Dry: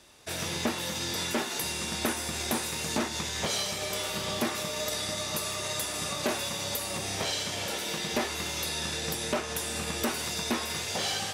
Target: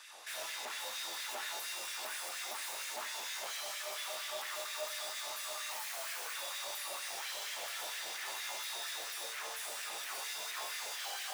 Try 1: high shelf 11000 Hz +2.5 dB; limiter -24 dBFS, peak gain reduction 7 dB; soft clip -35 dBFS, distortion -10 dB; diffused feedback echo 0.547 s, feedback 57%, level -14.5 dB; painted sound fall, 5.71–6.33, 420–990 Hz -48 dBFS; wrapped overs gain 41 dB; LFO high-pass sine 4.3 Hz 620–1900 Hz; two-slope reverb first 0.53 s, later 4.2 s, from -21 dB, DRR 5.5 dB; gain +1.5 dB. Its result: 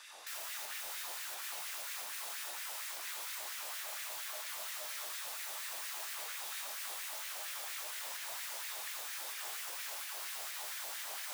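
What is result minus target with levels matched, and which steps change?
soft clip: distortion -5 dB
change: soft clip -44 dBFS, distortion -5 dB

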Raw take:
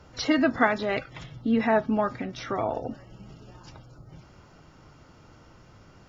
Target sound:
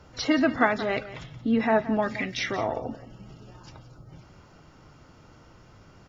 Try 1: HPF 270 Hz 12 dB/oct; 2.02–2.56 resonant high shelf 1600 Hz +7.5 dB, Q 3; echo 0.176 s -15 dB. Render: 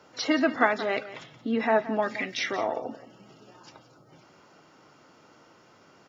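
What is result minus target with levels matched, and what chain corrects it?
250 Hz band -2.5 dB
2.02–2.56 resonant high shelf 1600 Hz +7.5 dB, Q 3; echo 0.176 s -15 dB

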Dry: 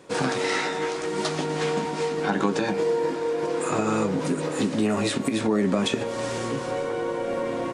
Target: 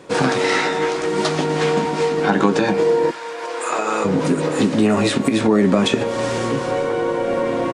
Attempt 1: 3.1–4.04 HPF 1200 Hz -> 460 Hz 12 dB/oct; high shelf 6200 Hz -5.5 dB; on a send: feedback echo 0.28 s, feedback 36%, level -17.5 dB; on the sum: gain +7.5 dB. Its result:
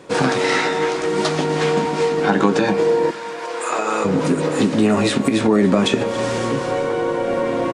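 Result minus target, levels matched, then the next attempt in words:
echo-to-direct +10 dB
3.1–4.04 HPF 1200 Hz -> 460 Hz 12 dB/oct; high shelf 6200 Hz -5.5 dB; on a send: feedback echo 0.28 s, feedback 36%, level -27.5 dB; on the sum: gain +7.5 dB

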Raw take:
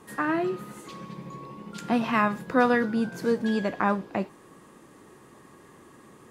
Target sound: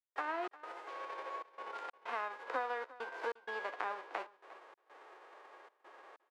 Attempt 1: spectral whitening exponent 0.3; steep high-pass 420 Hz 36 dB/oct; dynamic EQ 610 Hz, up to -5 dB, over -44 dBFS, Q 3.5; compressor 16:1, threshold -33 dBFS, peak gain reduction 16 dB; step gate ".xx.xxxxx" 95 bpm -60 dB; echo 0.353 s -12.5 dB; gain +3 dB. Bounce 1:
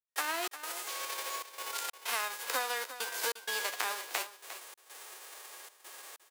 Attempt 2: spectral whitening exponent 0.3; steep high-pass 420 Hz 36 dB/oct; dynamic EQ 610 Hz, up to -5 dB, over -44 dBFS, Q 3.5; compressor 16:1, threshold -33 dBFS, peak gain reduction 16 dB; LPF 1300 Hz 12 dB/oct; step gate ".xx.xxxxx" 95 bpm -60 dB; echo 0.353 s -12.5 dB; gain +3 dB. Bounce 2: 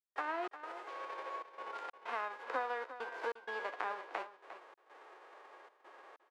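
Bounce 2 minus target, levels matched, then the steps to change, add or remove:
echo-to-direct +6 dB
change: echo 0.353 s -18.5 dB

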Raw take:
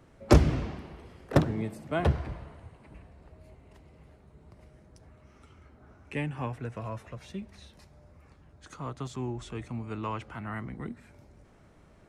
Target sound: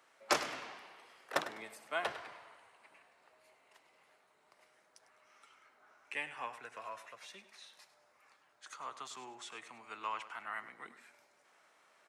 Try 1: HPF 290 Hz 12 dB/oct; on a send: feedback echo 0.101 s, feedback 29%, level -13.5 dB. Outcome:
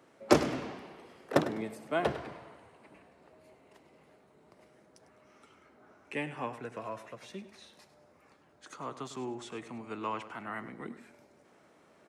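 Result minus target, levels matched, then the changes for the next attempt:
250 Hz band +12.0 dB
change: HPF 1000 Hz 12 dB/oct

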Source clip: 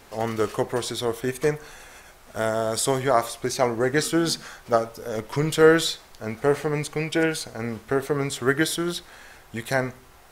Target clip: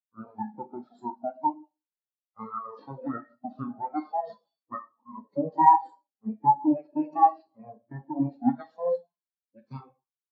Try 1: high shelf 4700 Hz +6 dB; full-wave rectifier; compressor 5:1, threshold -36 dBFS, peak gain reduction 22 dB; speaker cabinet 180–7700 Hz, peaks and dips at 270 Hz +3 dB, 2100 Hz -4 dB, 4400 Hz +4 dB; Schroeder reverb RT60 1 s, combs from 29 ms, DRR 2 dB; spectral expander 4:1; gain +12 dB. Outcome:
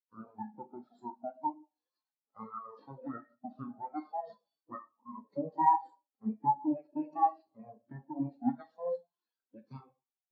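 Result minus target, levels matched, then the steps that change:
compressor: peak gain reduction +8.5 dB
change: compressor 5:1, threshold -25.5 dBFS, peak gain reduction 14 dB

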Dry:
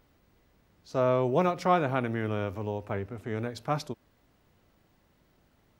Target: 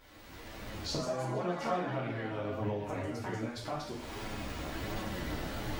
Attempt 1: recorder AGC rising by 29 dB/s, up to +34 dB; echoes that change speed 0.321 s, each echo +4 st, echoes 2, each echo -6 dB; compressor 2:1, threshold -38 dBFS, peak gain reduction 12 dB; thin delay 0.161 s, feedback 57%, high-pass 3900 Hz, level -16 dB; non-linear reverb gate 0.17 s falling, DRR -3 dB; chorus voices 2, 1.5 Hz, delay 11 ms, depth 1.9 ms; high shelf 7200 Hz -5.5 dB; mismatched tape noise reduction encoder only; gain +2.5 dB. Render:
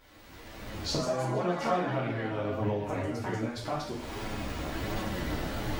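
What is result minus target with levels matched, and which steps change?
compressor: peak gain reduction -4.5 dB
change: compressor 2:1, threshold -47 dBFS, peak gain reduction 16.5 dB

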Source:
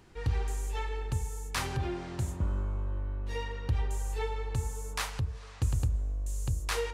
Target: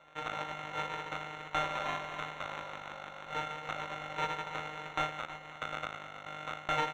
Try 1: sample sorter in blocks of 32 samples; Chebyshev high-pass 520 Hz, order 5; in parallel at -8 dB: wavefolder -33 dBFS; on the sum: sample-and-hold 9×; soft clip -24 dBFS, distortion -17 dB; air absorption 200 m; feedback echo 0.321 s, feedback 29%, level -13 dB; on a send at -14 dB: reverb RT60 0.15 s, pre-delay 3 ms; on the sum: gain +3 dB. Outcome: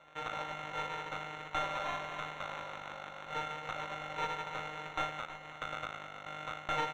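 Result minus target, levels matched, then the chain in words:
soft clip: distortion +14 dB; wavefolder: distortion +6 dB
sample sorter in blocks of 32 samples; Chebyshev high-pass 520 Hz, order 5; in parallel at -8 dB: wavefolder -26.5 dBFS; on the sum: sample-and-hold 9×; soft clip -15 dBFS, distortion -31 dB; air absorption 200 m; feedback echo 0.321 s, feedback 29%, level -13 dB; on a send at -14 dB: reverb RT60 0.15 s, pre-delay 3 ms; on the sum: gain +3 dB

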